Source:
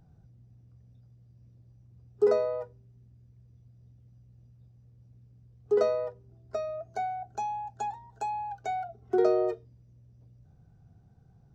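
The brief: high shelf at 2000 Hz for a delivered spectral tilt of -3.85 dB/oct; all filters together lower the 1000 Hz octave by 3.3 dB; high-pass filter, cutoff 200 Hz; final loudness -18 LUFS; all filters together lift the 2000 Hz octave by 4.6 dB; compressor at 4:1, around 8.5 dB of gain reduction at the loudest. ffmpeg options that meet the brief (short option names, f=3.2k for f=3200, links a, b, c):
-af "highpass=200,equalizer=f=1k:t=o:g=-7,highshelf=f=2k:g=7,equalizer=f=2k:t=o:g=4,acompressor=threshold=-30dB:ratio=4,volume=19dB"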